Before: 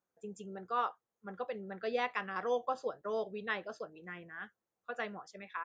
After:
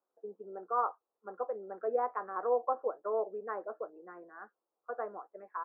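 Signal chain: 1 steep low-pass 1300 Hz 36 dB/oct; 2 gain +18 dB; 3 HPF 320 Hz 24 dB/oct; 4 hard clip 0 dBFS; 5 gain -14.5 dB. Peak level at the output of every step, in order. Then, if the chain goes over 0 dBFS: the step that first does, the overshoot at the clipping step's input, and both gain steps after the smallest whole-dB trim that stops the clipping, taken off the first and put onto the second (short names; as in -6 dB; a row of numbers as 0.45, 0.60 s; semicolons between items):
-22.5, -4.5, -4.0, -4.0, -18.5 dBFS; no overload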